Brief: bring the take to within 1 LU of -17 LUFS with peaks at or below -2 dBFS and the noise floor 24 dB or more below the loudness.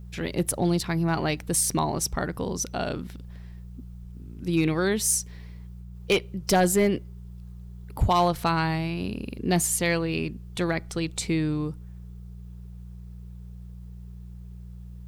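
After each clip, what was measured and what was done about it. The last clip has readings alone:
clipped samples 0.3%; clipping level -14.0 dBFS; hum 60 Hz; highest harmonic 180 Hz; hum level -38 dBFS; loudness -26.0 LUFS; peak level -14.0 dBFS; loudness target -17.0 LUFS
-> clip repair -14 dBFS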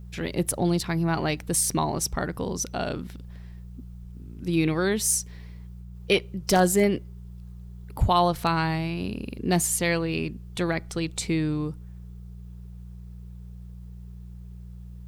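clipped samples 0.0%; hum 60 Hz; highest harmonic 180 Hz; hum level -38 dBFS
-> de-hum 60 Hz, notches 3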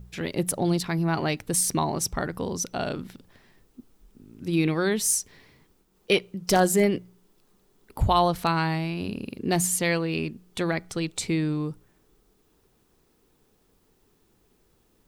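hum not found; loudness -26.0 LUFS; peak level -6.5 dBFS; loudness target -17.0 LUFS
-> trim +9 dB; peak limiter -2 dBFS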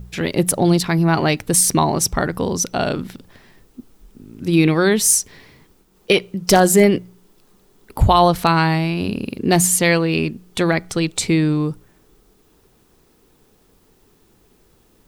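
loudness -17.0 LUFS; peak level -2.0 dBFS; noise floor -57 dBFS

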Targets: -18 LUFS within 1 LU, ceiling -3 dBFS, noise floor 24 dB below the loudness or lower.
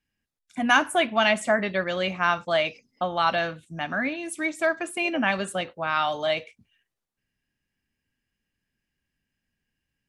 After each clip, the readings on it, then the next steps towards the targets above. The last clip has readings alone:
loudness -25.0 LUFS; peak level -5.0 dBFS; loudness target -18.0 LUFS
-> trim +7 dB; peak limiter -3 dBFS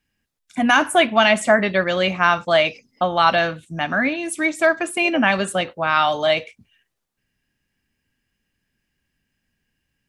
loudness -18.5 LUFS; peak level -3.0 dBFS; noise floor -77 dBFS

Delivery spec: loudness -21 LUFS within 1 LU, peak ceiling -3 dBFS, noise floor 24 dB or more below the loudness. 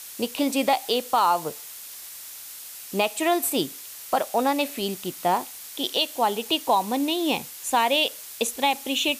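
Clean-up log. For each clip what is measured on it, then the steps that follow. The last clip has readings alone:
noise floor -41 dBFS; noise floor target -49 dBFS; loudness -24.5 LUFS; peak level -9.5 dBFS; loudness target -21.0 LUFS
-> noise print and reduce 8 dB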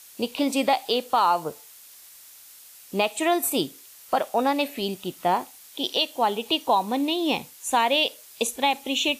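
noise floor -48 dBFS; noise floor target -49 dBFS
-> noise print and reduce 6 dB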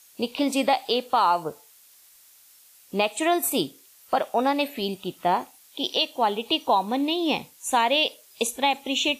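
noise floor -54 dBFS; loudness -24.5 LUFS; peak level -10.0 dBFS; loudness target -21.0 LUFS
-> trim +3.5 dB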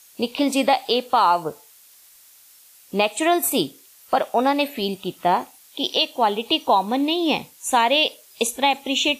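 loudness -21.0 LUFS; peak level -6.5 dBFS; noise floor -51 dBFS

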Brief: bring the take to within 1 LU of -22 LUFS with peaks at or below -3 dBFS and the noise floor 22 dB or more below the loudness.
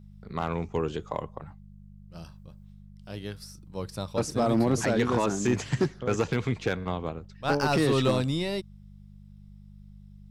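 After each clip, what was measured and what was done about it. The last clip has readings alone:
clipped samples 0.5%; clipping level -16.5 dBFS; hum 50 Hz; highest harmonic 200 Hz; hum level -45 dBFS; loudness -28.0 LUFS; peak level -16.5 dBFS; loudness target -22.0 LUFS
-> clip repair -16.5 dBFS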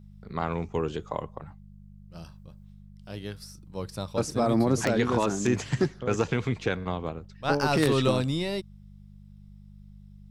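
clipped samples 0.0%; hum 50 Hz; highest harmonic 200 Hz; hum level -46 dBFS
-> de-hum 50 Hz, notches 4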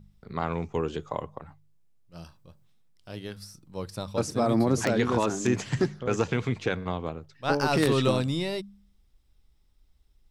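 hum not found; loudness -28.0 LUFS; peak level -7.5 dBFS; loudness target -22.0 LUFS
-> trim +6 dB; peak limiter -3 dBFS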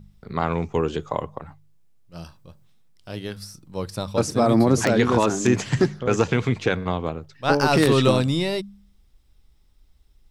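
loudness -22.0 LUFS; peak level -3.0 dBFS; noise floor -58 dBFS

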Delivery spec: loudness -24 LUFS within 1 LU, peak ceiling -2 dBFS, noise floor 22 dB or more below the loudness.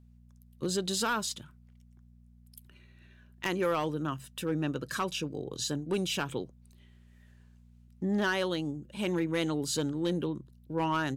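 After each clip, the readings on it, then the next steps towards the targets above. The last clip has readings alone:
clipped samples 0.5%; clipping level -22.5 dBFS; hum 60 Hz; highest harmonic 240 Hz; hum level -55 dBFS; loudness -32.5 LUFS; peak level -22.5 dBFS; loudness target -24.0 LUFS
-> clip repair -22.5 dBFS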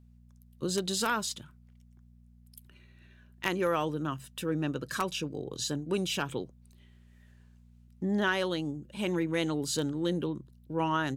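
clipped samples 0.0%; hum 60 Hz; highest harmonic 240 Hz; hum level -55 dBFS
-> de-hum 60 Hz, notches 4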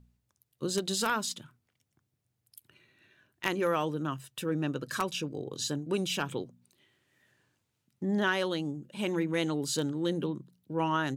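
hum not found; loudness -32.0 LUFS; peak level -13.0 dBFS; loudness target -24.0 LUFS
-> trim +8 dB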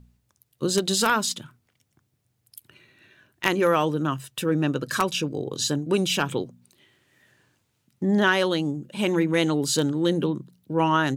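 loudness -24.0 LUFS; peak level -5.0 dBFS; noise floor -73 dBFS

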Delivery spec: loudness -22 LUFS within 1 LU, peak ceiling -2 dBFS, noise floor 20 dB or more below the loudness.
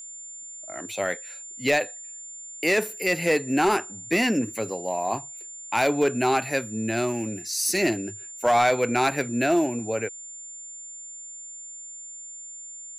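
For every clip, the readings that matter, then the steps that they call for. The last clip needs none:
clipped samples 0.5%; clipping level -14.0 dBFS; steady tone 7.2 kHz; tone level -38 dBFS; loudness -25.0 LUFS; peak level -14.0 dBFS; loudness target -22.0 LUFS
-> clip repair -14 dBFS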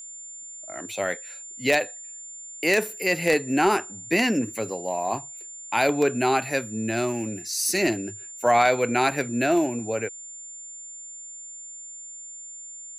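clipped samples 0.0%; steady tone 7.2 kHz; tone level -38 dBFS
-> band-stop 7.2 kHz, Q 30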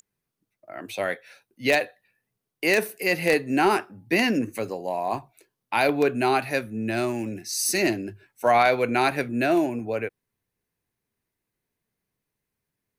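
steady tone not found; loudness -24.0 LUFS; peak level -5.0 dBFS; loudness target -22.0 LUFS
-> trim +2 dB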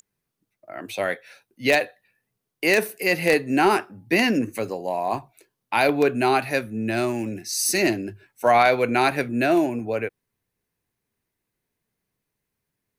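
loudness -22.0 LUFS; peak level -3.0 dBFS; noise floor -82 dBFS

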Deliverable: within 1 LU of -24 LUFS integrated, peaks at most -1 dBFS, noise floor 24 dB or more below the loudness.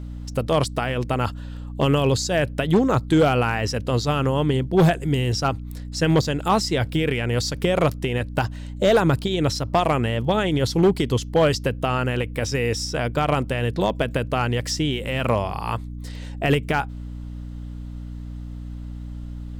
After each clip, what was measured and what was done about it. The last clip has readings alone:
clipped samples 0.6%; clipping level -11.0 dBFS; hum 60 Hz; highest harmonic 300 Hz; hum level -31 dBFS; loudness -22.0 LUFS; peak level -11.0 dBFS; loudness target -24.0 LUFS
-> clip repair -11 dBFS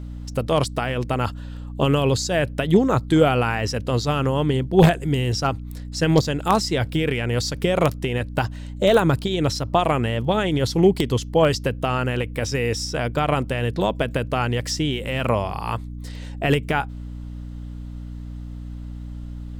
clipped samples 0.0%; hum 60 Hz; highest harmonic 240 Hz; hum level -31 dBFS
-> de-hum 60 Hz, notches 4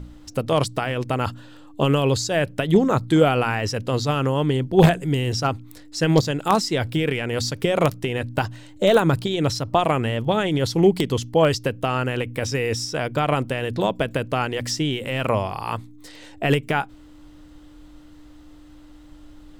hum not found; loudness -22.0 LUFS; peak level -1.5 dBFS; loudness target -24.0 LUFS
-> trim -2 dB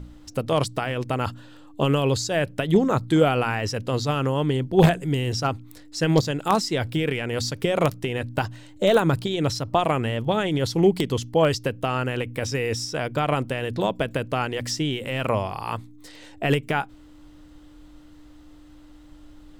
loudness -24.0 LUFS; peak level -3.5 dBFS; noise floor -48 dBFS

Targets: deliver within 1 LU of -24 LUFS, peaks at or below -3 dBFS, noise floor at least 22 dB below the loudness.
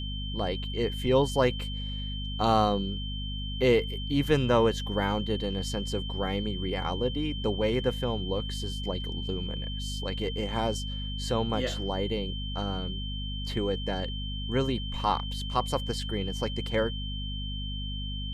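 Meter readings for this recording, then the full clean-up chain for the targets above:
hum 50 Hz; highest harmonic 250 Hz; hum level -32 dBFS; steady tone 3.1 kHz; tone level -38 dBFS; loudness -30.0 LUFS; peak level -9.5 dBFS; loudness target -24.0 LUFS
-> hum notches 50/100/150/200/250 Hz; band-stop 3.1 kHz, Q 30; trim +6 dB

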